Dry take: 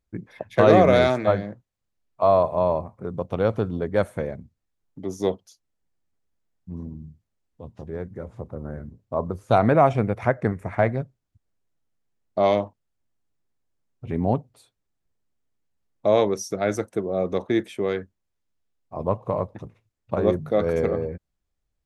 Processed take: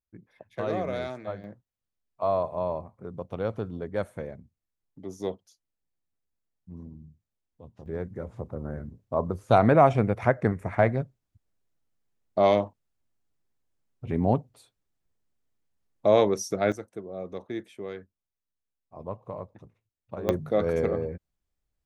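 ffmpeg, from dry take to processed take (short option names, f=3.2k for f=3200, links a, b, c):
-af "asetnsamples=n=441:p=0,asendcmd='1.44 volume volume -8dB;7.86 volume volume -1dB;16.72 volume volume -12dB;20.29 volume volume -3dB',volume=-15dB"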